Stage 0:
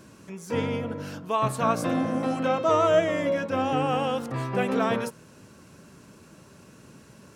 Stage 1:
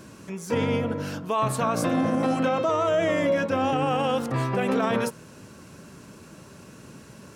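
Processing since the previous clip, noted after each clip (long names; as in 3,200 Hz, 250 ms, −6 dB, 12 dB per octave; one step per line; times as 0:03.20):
brickwall limiter −19.5 dBFS, peak gain reduction 9 dB
level +4.5 dB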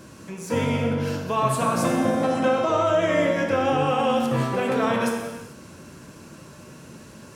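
reverb whose tail is shaped and stops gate 470 ms falling, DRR 1 dB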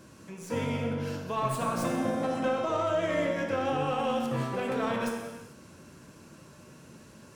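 stylus tracing distortion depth 0.037 ms
level −7.5 dB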